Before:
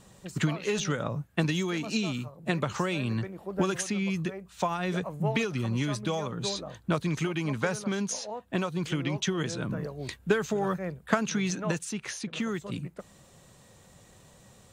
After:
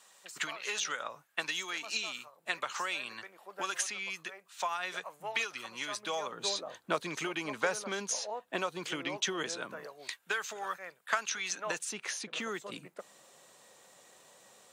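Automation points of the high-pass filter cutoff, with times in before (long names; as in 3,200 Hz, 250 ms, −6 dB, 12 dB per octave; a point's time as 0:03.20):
0:05.67 1,000 Hz
0:06.55 470 Hz
0:09.41 470 Hz
0:10.20 1,100 Hz
0:11.42 1,100 Hz
0:11.90 460 Hz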